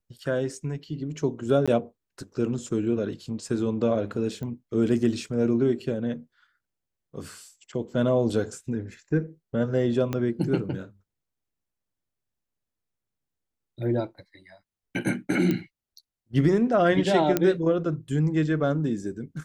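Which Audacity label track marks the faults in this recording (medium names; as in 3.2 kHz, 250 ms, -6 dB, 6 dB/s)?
1.660000	1.680000	dropout 16 ms
4.430000	4.430000	pop -24 dBFS
10.130000	10.130000	pop -15 dBFS
15.510000	15.510000	pop -14 dBFS
17.370000	17.370000	pop -8 dBFS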